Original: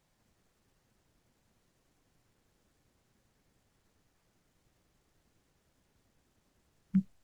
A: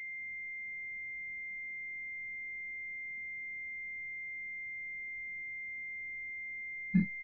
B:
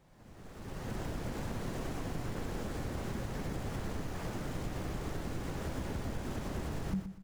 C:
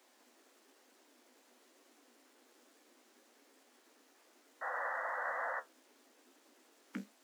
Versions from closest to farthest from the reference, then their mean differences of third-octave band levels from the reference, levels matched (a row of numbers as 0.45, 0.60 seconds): A, B, C; 5.5, 12.5, 18.0 decibels